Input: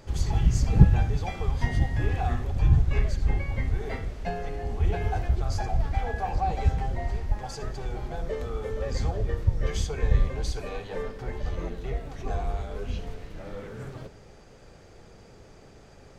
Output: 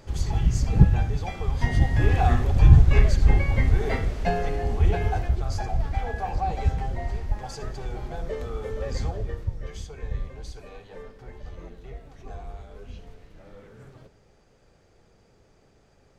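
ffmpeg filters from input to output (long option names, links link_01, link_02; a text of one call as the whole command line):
ffmpeg -i in.wav -af "volume=7dB,afade=type=in:start_time=1.44:duration=0.79:silence=0.446684,afade=type=out:start_time=4.37:duration=1.02:silence=0.446684,afade=type=out:start_time=8.94:duration=0.73:silence=0.354813" out.wav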